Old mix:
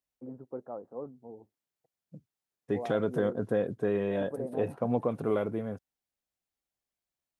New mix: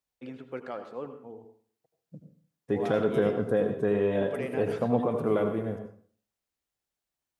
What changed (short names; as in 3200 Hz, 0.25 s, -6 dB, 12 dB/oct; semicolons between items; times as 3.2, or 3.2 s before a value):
first voice: remove inverse Chebyshev low-pass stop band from 3200 Hz, stop band 60 dB; reverb: on, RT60 0.50 s